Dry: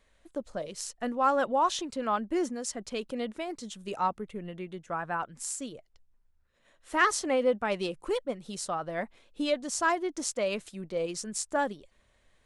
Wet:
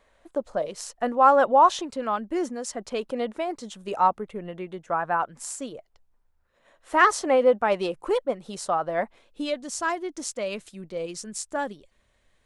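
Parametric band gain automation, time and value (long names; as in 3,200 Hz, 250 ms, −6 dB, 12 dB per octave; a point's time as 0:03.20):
parametric band 780 Hz 2.3 octaves
0:01.72 +10 dB
0:02.17 +1.5 dB
0:02.87 +9 dB
0:09.01 +9 dB
0:09.51 −0.5 dB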